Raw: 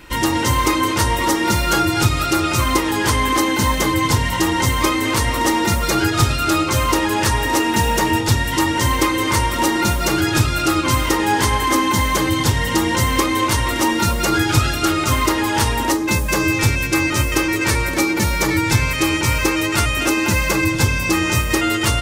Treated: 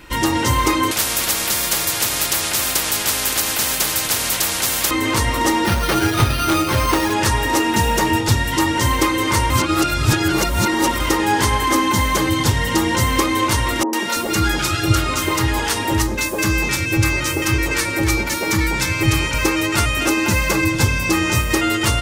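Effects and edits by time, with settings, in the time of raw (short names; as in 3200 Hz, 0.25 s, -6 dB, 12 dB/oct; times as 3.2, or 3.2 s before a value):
0.91–4.91 spectral compressor 10:1
5.66–7.13 careless resampling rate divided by 6×, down none, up hold
9.5–11 reverse
13.83–19.34 three bands offset in time mids, highs, lows 0.1/0.33 s, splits 240/880 Hz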